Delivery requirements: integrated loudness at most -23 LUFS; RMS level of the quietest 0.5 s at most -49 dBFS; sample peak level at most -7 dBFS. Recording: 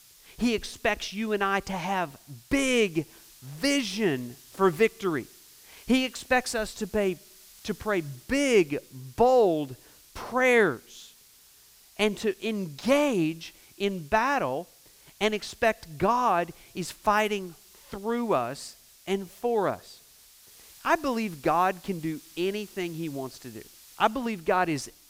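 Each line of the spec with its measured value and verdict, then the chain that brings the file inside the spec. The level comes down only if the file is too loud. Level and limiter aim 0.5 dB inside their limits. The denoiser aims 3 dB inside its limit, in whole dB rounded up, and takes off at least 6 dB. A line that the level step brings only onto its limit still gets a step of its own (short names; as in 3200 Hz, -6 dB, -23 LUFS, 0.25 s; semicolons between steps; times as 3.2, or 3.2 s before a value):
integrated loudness -27.0 LUFS: OK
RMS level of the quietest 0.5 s -56 dBFS: OK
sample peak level -9.0 dBFS: OK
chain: none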